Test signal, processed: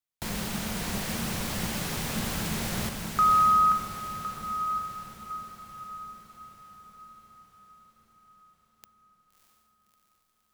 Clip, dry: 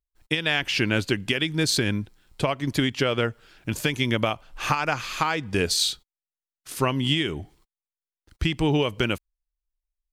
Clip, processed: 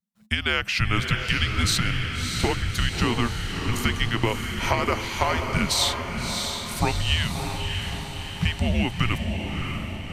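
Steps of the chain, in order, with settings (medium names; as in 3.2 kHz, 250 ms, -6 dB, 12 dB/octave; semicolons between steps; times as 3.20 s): frequency shift -230 Hz; echo that smears into a reverb 633 ms, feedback 58%, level -5 dB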